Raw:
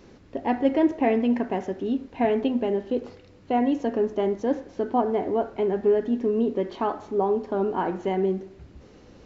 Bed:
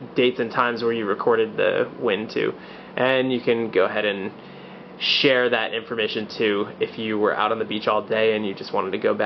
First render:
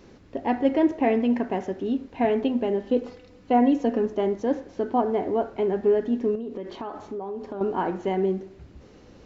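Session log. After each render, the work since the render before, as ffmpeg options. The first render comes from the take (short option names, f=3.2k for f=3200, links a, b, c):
-filter_complex "[0:a]asettb=1/sr,asplit=3[a][b][c];[a]atrim=end=2.834[d];[b]atrim=start=2.83:end=4.06,asetpts=PTS-STARTPTS,afade=t=in:d=0.004:c=qsin,afade=t=out:st=1.226:d=0.004:c=qsin,aecho=1:1:4:0.54,atrim=end_sample=54243[e];[c]atrim=start=4.056[f];[d][e]acrossfade=d=0.004:c1=hsin:c2=qsin[g];[g][f]acrossfade=d=0.004:c1=qsin:c2=hsin,asettb=1/sr,asplit=3[h][i][j];[h]atrim=end=6.354[k];[i]atrim=start=6.35:end=7.61,asetpts=PTS-STARTPTS,afade=t=in:d=0.004:c=qsin,afade=t=out:st=1.256:d=0.004:c=qsin,acompressor=threshold=-29dB:ratio=12:attack=3.2:release=140:knee=1:detection=peak[l];[j]atrim=start=7.606[m];[k][l]acrossfade=d=0.004:c1=hsin:c2=qsin[n];[n][m]acrossfade=d=0.004:c1=qsin:c2=hsin"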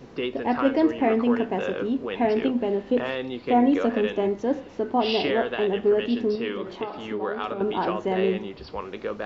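-filter_complex "[1:a]volume=-10dB[a];[0:a][a]amix=inputs=2:normalize=0"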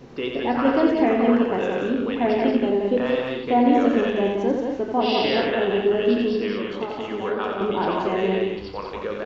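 -filter_complex "[0:a]asplit=2[a][b];[b]adelay=30,volume=-10.5dB[c];[a][c]amix=inputs=2:normalize=0,aecho=1:1:87.46|177.8|221.6:0.562|0.631|0.447"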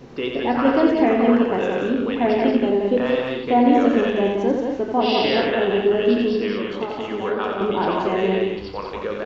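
-af "volume=2dB"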